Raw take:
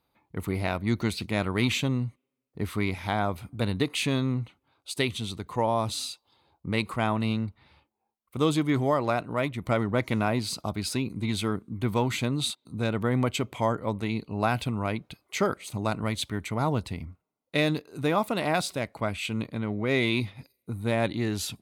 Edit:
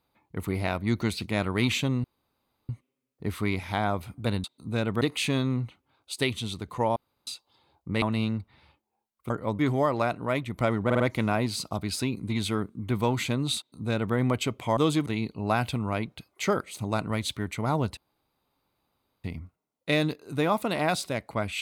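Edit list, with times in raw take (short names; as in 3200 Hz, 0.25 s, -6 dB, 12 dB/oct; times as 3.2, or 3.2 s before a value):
2.04 insert room tone 0.65 s
5.74–6.05 room tone
6.8–7.1 cut
8.38–8.67 swap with 13.7–13.99
9.93 stutter 0.05 s, 4 plays
12.51–13.08 copy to 3.79
16.9 insert room tone 1.27 s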